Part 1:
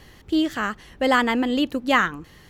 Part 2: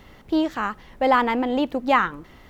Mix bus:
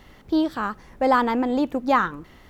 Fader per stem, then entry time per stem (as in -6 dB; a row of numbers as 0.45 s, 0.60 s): -10.5 dB, -2.0 dB; 0.00 s, 0.00 s